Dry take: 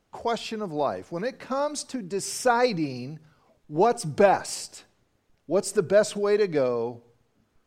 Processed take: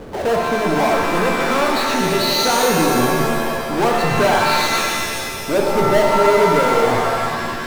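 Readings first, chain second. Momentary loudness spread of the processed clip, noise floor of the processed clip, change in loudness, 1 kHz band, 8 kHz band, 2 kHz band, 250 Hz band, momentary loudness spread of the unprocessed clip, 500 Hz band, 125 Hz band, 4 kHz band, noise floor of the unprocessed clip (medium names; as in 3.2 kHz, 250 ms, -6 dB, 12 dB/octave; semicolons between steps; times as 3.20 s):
7 LU, -26 dBFS, +9.0 dB, +11.5 dB, +9.5 dB, +15.0 dB, +10.5 dB, 12 LU, +7.5 dB, +11.5 dB, +16.0 dB, -70 dBFS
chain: knee-point frequency compression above 3.6 kHz 4:1; LFO low-pass saw up 0.38 Hz 460–3800 Hz; power-law waveshaper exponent 0.35; pitch-shifted reverb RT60 2 s, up +7 st, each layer -2 dB, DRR 1.5 dB; trim -8 dB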